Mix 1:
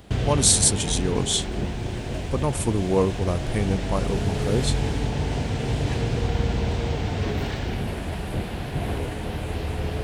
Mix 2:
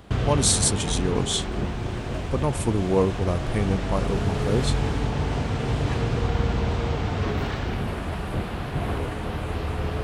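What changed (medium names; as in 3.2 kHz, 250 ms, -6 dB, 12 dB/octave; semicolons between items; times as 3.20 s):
background: add peaking EQ 1.2 kHz +8 dB 0.53 oct; master: add treble shelf 4.9 kHz -5 dB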